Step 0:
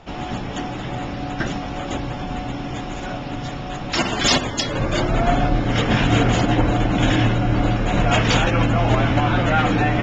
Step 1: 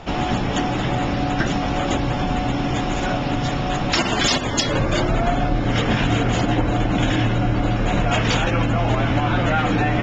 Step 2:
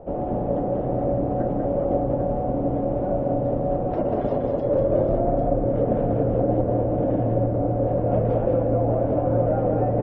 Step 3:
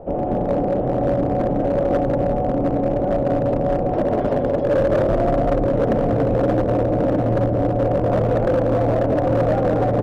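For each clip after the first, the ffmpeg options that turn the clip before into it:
-af "acompressor=threshold=-24dB:ratio=5,volume=7.5dB"
-filter_complex "[0:a]lowpass=f=550:t=q:w=4.9,asplit=2[a][b];[b]aecho=0:1:192|796:0.631|0.398[c];[a][c]amix=inputs=2:normalize=0,volume=-7.5dB"
-af "volume=17.5dB,asoftclip=hard,volume=-17.5dB,bandreject=f=60:t=h:w=6,bandreject=f=120:t=h:w=6,volume=4.5dB"

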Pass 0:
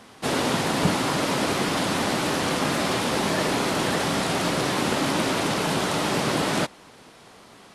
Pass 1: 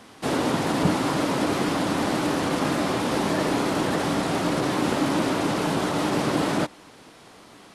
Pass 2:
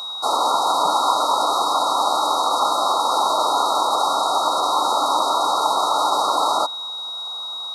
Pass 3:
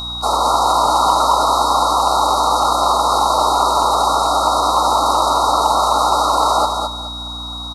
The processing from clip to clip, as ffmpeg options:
-filter_complex "[0:a]equalizer=f=300:t=o:w=0.21:g=6,acrossover=split=1500[a][b];[b]alimiter=level_in=2.5dB:limit=-24dB:level=0:latency=1:release=59,volume=-2.5dB[c];[a][c]amix=inputs=2:normalize=0"
-af "highpass=f=900:t=q:w=2.2,aeval=exprs='val(0)+0.0251*sin(2*PI*3800*n/s)':c=same,afftfilt=real='re*(1-between(b*sr/4096,1400,3800))':imag='im*(1-between(b*sr/4096,1400,3800))':win_size=4096:overlap=0.75,volume=6dB"
-filter_complex "[0:a]aeval=exprs='val(0)+0.0178*(sin(2*PI*60*n/s)+sin(2*PI*2*60*n/s)/2+sin(2*PI*3*60*n/s)/3+sin(2*PI*4*60*n/s)/4+sin(2*PI*5*60*n/s)/5)':c=same,asplit=2[a][b];[b]volume=12dB,asoftclip=hard,volume=-12dB,volume=-12dB[c];[a][c]amix=inputs=2:normalize=0,aecho=1:1:213|426|639:0.562|0.146|0.038,volume=1.5dB"

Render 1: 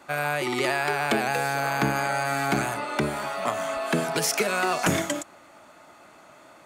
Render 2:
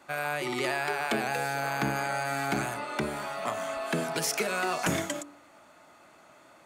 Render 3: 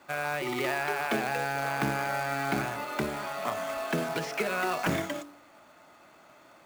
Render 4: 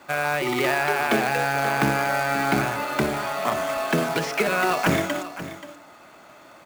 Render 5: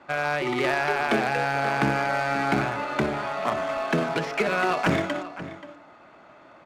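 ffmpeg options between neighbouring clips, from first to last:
-af "bandreject=f=48.25:t=h:w=4,bandreject=f=96.5:t=h:w=4,bandreject=f=144.75:t=h:w=4,bandreject=f=193:t=h:w=4,bandreject=f=241.25:t=h:w=4,bandreject=f=289.5:t=h:w=4,bandreject=f=337.75:t=h:w=4,bandreject=f=386:t=h:w=4,bandreject=f=434.25:t=h:w=4,bandreject=f=482.5:t=h:w=4,bandreject=f=530.75:t=h:w=4,bandreject=f=579:t=h:w=4,bandreject=f=627.25:t=h:w=4,bandreject=f=675.5:t=h:w=4,bandreject=f=723.75:t=h:w=4,bandreject=f=772:t=h:w=4,bandreject=f=820.25:t=h:w=4,bandreject=f=868.5:t=h:w=4,bandreject=f=916.75:t=h:w=4,bandreject=f=965:t=h:w=4,bandreject=f=1.01325k:t=h:w=4,bandreject=f=1.0615k:t=h:w=4,bandreject=f=1.10975k:t=h:w=4,bandreject=f=1.158k:t=h:w=4,bandreject=f=1.20625k:t=h:w=4,bandreject=f=1.2545k:t=h:w=4,bandreject=f=1.30275k:t=h:w=4,bandreject=f=1.351k:t=h:w=4,bandreject=f=1.39925k:t=h:w=4,volume=-4.5dB"
-filter_complex "[0:a]lowpass=6.6k,acrossover=split=3600[a][b];[b]acompressor=threshold=-48dB:ratio=4:attack=1:release=60[c];[a][c]amix=inputs=2:normalize=0,acrusher=bits=3:mode=log:mix=0:aa=0.000001"
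-af "aecho=1:1:530:0.211,volume=7.5dB"
-af "adynamicsmooth=sensitivity=2:basefreq=3.2k,volume=-1.5dB"

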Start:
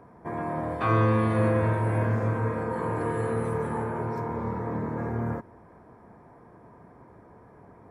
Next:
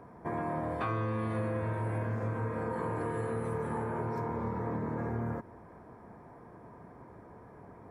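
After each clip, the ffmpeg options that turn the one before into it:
-af "acompressor=threshold=-31dB:ratio=5"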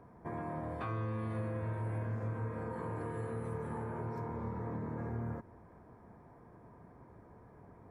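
-af "lowshelf=f=140:g=7,volume=-7dB"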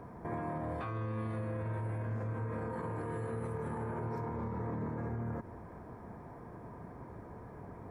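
-af "alimiter=level_in=15dB:limit=-24dB:level=0:latency=1:release=81,volume=-15dB,volume=8.5dB"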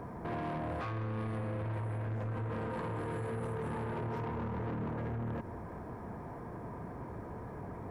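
-af "asoftclip=type=tanh:threshold=-39dB,volume=5.5dB"

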